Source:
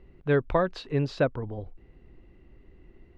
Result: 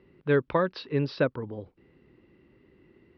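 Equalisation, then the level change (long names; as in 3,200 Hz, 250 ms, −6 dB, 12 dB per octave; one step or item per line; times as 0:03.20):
high-pass filter 140 Hz 12 dB per octave
Butterworth low-pass 5,600 Hz 96 dB per octave
parametric band 710 Hz −9.5 dB 0.29 octaves
+1.0 dB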